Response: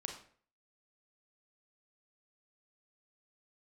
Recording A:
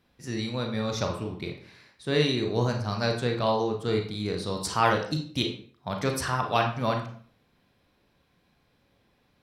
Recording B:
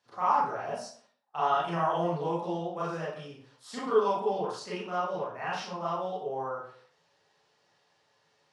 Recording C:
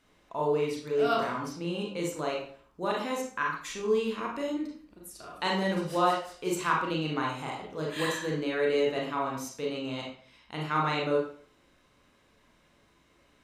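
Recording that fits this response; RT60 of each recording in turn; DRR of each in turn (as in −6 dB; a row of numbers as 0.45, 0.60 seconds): A; 0.50, 0.50, 0.50 seconds; 2.5, −9.5, −2.5 decibels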